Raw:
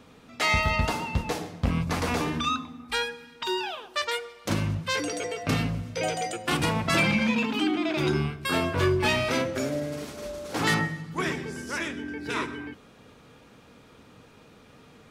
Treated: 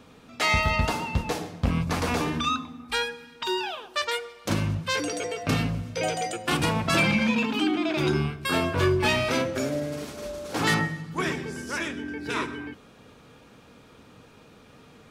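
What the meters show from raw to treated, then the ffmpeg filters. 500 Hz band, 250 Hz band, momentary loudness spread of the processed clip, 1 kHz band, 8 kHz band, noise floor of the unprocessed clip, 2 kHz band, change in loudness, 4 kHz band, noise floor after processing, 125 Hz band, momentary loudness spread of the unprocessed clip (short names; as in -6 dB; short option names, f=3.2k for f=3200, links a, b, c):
+1.0 dB, +1.0 dB, 10 LU, +1.0 dB, +1.0 dB, -54 dBFS, +0.5 dB, +1.0 dB, +1.0 dB, -53 dBFS, +1.0 dB, 10 LU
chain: -af "bandreject=f=2k:w=26,volume=1dB"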